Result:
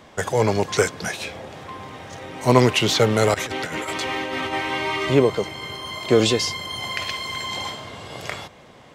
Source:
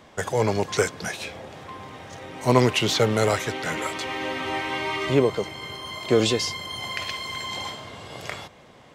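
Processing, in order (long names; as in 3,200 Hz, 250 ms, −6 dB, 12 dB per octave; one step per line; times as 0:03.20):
0:03.34–0:04.53: compressor whose output falls as the input rises −30 dBFS, ratio −0.5
level +3 dB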